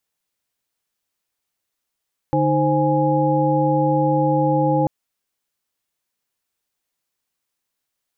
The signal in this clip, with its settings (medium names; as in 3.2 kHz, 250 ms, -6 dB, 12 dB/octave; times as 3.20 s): chord D3/D#4/C5/G#5 sine, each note -20.5 dBFS 2.54 s